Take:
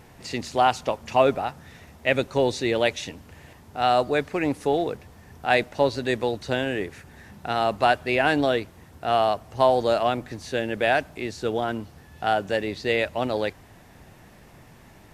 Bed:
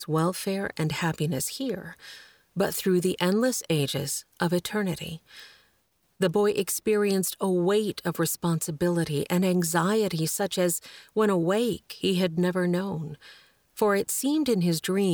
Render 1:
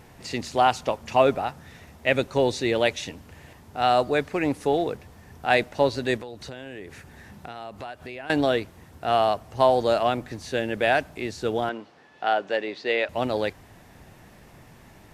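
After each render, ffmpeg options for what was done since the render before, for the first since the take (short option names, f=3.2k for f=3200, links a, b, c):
-filter_complex "[0:a]asettb=1/sr,asplit=3[a][b][c];[a]atrim=end=6.174[d];[b]atrim=start=6.17:end=8.3,asetpts=PTS-STARTPTS,afade=t=in:d=0.004:c=qsin,afade=t=out:st=2.126:d=0.004:c=qsin,acompressor=threshold=-35dB:ratio=5:attack=3.2:release=140:knee=1:detection=peak[e];[c]atrim=start=8.296[f];[d][e]acrossfade=d=0.004:c1=hsin:c2=qsin[g];[g][f]acrossfade=d=0.004:c1=qsin:c2=hsin,asettb=1/sr,asplit=3[h][i][j];[h]atrim=end=11.694[k];[i]atrim=start=11.69:end=13.09,asetpts=PTS-STARTPTS,afade=t=in:d=0.004:c=qsin,afade=t=out:st=1.396:d=0.004:c=qsin,highpass=340,lowpass=4.3k[l];[j]atrim=start=13.086[m];[k][l]acrossfade=d=0.004:c1=hsin:c2=qsin[n];[n][m]acrossfade=d=0.004:c1=qsin:c2=hsin"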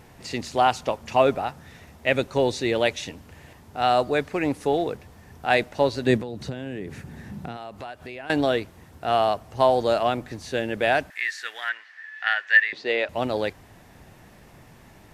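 -filter_complex "[0:a]asettb=1/sr,asplit=3[a][b][c];[a]atrim=end=6.064[d];[b]atrim=start=6.06:end=7.57,asetpts=PTS-STARTPTS,afade=t=in:d=0.004:c=qsin,afade=t=out:st=1.506:d=0.004:c=qsin,equalizer=f=170:t=o:w=2.1:g=11.5[e];[c]atrim=start=7.566[f];[d][e]acrossfade=d=0.004:c1=hsin:c2=qsin[g];[g][f]acrossfade=d=0.004:c1=qsin:c2=hsin,asettb=1/sr,asplit=3[h][i][j];[h]atrim=end=11.104[k];[i]atrim=start=11.1:end=12.73,asetpts=PTS-STARTPTS,afade=t=in:d=0.004:c=qsin,afade=t=out:st=1.626:d=0.004:c=qsin,highpass=f=1.8k:t=q:w=11[l];[j]atrim=start=12.726[m];[k][l]acrossfade=d=0.004:c1=hsin:c2=qsin[n];[n][m]acrossfade=d=0.004:c1=qsin:c2=hsin"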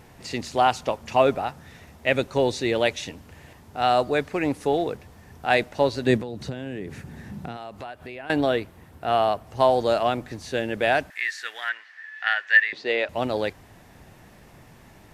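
-filter_complex "[0:a]asettb=1/sr,asplit=3[a][b][c];[a]atrim=end=7.834[d];[b]atrim=start=7.83:end=9.47,asetpts=PTS-STARTPTS,afade=t=in:d=0.004:c=qsin,afade=t=out:st=1.636:d=0.004:c=qsin,equalizer=f=6.2k:t=o:w=1.2:g=-5[e];[c]atrim=start=9.466[f];[d][e]acrossfade=d=0.004:c1=hsin:c2=qsin[g];[g][f]acrossfade=d=0.004:c1=qsin:c2=hsin"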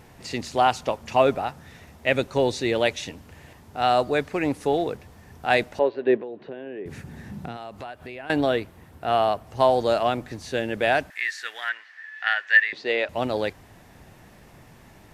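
-filter_complex "[0:a]asettb=1/sr,asplit=3[a][b][c];[a]atrim=end=5.794[d];[b]atrim=start=5.79:end=6.86,asetpts=PTS-STARTPTS,afade=t=in:d=0.004:c=qsin,afade=t=out:st=1.066:d=0.004:c=qsin,highpass=370,equalizer=f=390:t=q:w=4:g=6,equalizer=f=860:t=q:w=4:g=-3,equalizer=f=1.3k:t=q:w=4:g=-7,equalizer=f=2.1k:t=q:w=4:g=-6,lowpass=f=2.5k:w=0.5412,lowpass=f=2.5k:w=1.3066[e];[c]atrim=start=6.856[f];[d][e]acrossfade=d=0.004:c1=hsin:c2=qsin[g];[g][f]acrossfade=d=0.004:c1=qsin:c2=hsin"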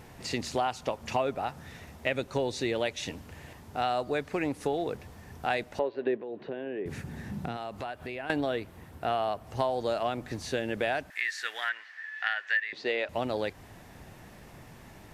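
-af "acompressor=threshold=-27dB:ratio=4"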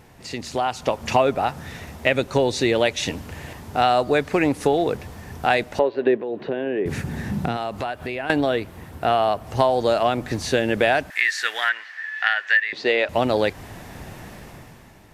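-af "dynaudnorm=f=110:g=13:m=11.5dB"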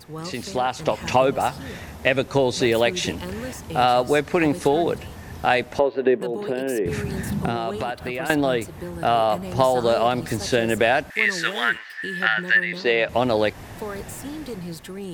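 -filter_complex "[1:a]volume=-9.5dB[a];[0:a][a]amix=inputs=2:normalize=0"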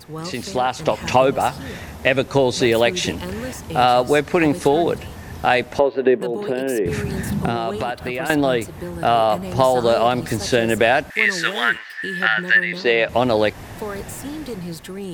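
-af "volume=3dB,alimiter=limit=-1dB:level=0:latency=1"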